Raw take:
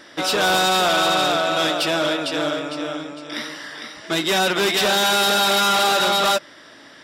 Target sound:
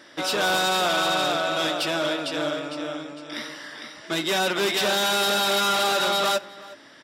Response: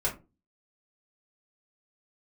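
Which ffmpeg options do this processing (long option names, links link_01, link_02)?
-filter_complex "[0:a]highpass=60,asplit=2[link_01][link_02];[link_02]adelay=367.3,volume=-19dB,highshelf=frequency=4000:gain=-8.27[link_03];[link_01][link_03]amix=inputs=2:normalize=0,asplit=2[link_04][link_05];[1:a]atrim=start_sample=2205[link_06];[link_05][link_06]afir=irnorm=-1:irlink=0,volume=-23.5dB[link_07];[link_04][link_07]amix=inputs=2:normalize=0,volume=-5dB"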